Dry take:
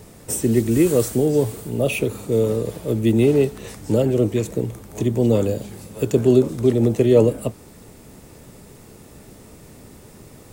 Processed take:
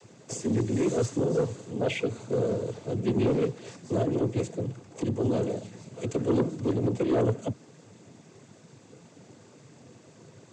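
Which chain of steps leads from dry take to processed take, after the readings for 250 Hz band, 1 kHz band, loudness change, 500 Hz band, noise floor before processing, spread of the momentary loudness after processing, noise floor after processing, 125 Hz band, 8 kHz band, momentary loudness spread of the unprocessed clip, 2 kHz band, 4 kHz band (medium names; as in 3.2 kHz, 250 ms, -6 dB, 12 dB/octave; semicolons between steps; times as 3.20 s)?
-9.0 dB, -2.5 dB, -9.0 dB, -9.5 dB, -45 dBFS, 10 LU, -55 dBFS, -8.5 dB, -11.5 dB, 11 LU, -7.5 dB, -7.0 dB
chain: noise-vocoded speech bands 16; saturation -11.5 dBFS, distortion -14 dB; trim -6.5 dB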